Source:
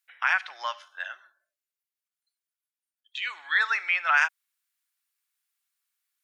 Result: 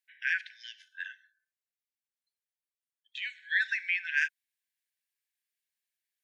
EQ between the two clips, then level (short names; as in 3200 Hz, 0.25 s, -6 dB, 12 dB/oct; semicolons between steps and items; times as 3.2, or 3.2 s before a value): brick-wall FIR high-pass 1500 Hz; high shelf 3300 Hz -6.5 dB; -2.5 dB